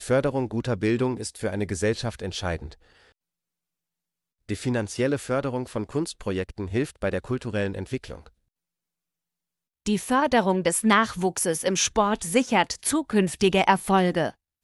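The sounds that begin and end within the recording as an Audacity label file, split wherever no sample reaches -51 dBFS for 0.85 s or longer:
4.490000	8.290000	sound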